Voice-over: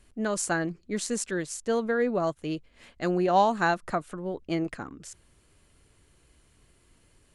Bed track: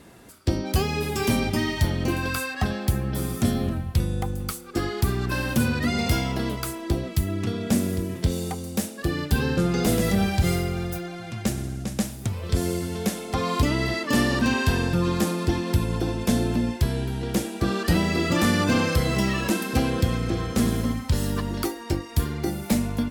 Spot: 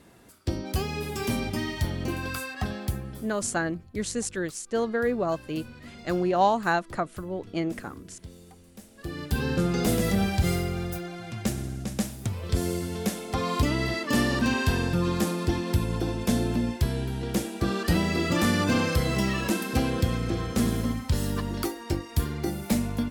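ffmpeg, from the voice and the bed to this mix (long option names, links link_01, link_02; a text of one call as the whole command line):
ffmpeg -i stem1.wav -i stem2.wav -filter_complex "[0:a]adelay=3050,volume=0dB[link_01];[1:a]volume=13dB,afade=type=out:start_time=2.84:duration=0.45:silence=0.16788,afade=type=in:start_time=8.85:duration=0.69:silence=0.11885[link_02];[link_01][link_02]amix=inputs=2:normalize=0" out.wav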